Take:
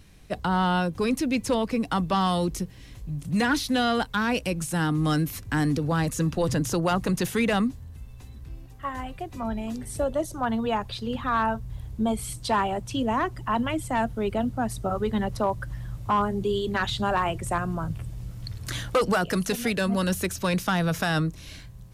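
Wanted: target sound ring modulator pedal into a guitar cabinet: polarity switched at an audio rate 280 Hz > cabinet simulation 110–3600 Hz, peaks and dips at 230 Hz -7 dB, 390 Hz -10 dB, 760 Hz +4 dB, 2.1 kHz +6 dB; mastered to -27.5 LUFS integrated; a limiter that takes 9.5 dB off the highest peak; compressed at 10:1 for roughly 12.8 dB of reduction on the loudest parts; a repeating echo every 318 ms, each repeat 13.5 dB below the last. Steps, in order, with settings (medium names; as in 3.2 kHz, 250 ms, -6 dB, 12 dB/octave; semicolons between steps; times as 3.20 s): compression 10:1, threshold -32 dBFS; peak limiter -30 dBFS; feedback delay 318 ms, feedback 21%, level -13.5 dB; polarity switched at an audio rate 280 Hz; cabinet simulation 110–3600 Hz, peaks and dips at 230 Hz -7 dB, 390 Hz -10 dB, 760 Hz +4 dB, 2.1 kHz +6 dB; trim +11.5 dB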